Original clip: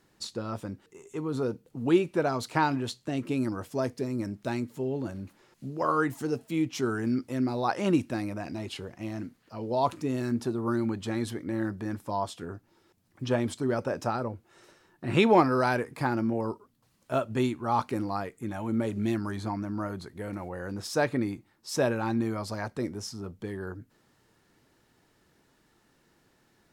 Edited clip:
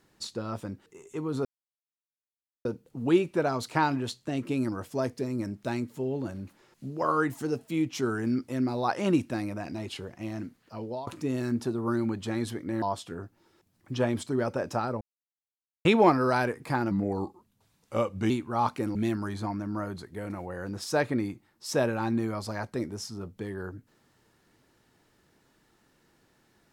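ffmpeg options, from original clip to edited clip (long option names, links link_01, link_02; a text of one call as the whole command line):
ffmpeg -i in.wav -filter_complex "[0:a]asplit=9[link_01][link_02][link_03][link_04][link_05][link_06][link_07][link_08][link_09];[link_01]atrim=end=1.45,asetpts=PTS-STARTPTS,afade=type=out:start_time=1.446:duration=0.004:curve=hsin,apad=pad_dur=1.2[link_10];[link_02]atrim=start=1.45:end=9.87,asetpts=PTS-STARTPTS,afade=type=in:duration=0.004:curve=hsin,afade=type=out:start_time=8.13:duration=0.29:silence=0.0749894[link_11];[link_03]atrim=start=9.87:end=11.622,asetpts=PTS-STARTPTS,afade=type=in:duration=0.004:curve=hsin:silence=0.0749894[link_12];[link_04]atrim=start=12.128:end=14.32,asetpts=PTS-STARTPTS,afade=type=out:start_time=2.188:duration=0.004:curve=hsin[link_13];[link_05]atrim=start=14.32:end=15.16,asetpts=PTS-STARTPTS,volume=0[link_14];[link_06]atrim=start=15.16:end=16.224,asetpts=PTS-STARTPTS,afade=type=in:duration=0.004:curve=hsin[link_15];[link_07]atrim=start=16.22:end=17.43,asetpts=PTS-STARTPTS,asetrate=38367,aresample=44100,atrim=end_sample=61334,asetpts=PTS-STARTPTS[link_16];[link_08]atrim=start=17.426:end=18.082[link_17];[link_09]atrim=start=18.978[link_18];[link_10][link_11][link_12]concat=n=3:v=0:a=1[link_19];[link_13][link_14][link_15]concat=n=3:v=0:a=1[link_20];[link_19][link_20]acrossfade=duration=0.004:curve1=hsin:curve2=hsin[link_21];[link_21][link_16]acrossfade=duration=0.004:curve1=hsin:curve2=hsin[link_22];[link_22][link_17]acrossfade=duration=0.004:curve1=hsin:curve2=hsin[link_23];[link_23][link_18]acrossfade=duration=0.004:curve1=hsin:curve2=hsin" out.wav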